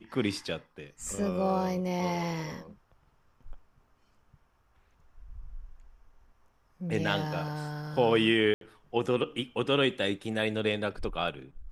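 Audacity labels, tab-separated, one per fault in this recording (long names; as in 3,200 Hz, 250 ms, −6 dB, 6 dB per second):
8.540000	8.610000	drop-out 72 ms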